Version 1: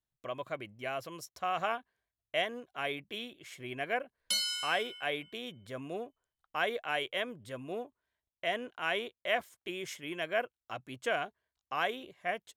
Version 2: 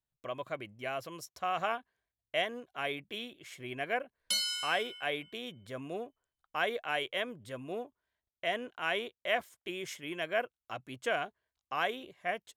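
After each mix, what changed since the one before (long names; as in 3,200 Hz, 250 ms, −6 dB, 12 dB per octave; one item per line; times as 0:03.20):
nothing changed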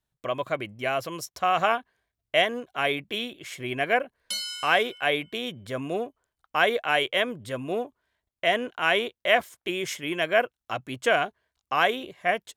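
speech +10.0 dB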